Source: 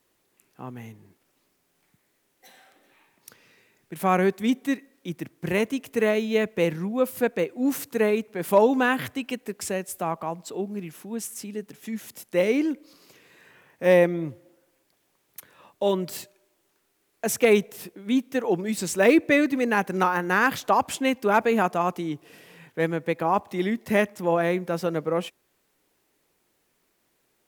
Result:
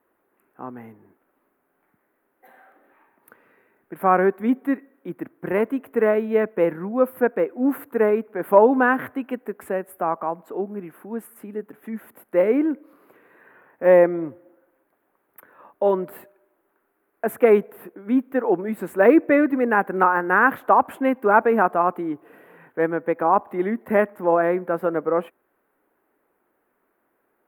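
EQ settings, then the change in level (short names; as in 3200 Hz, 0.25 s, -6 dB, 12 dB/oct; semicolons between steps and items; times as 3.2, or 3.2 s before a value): EQ curve 150 Hz 0 dB, 250 Hz +10 dB, 1500 Hz +13 dB, 5700 Hz -25 dB, 12000 Hz +2 dB; -7.0 dB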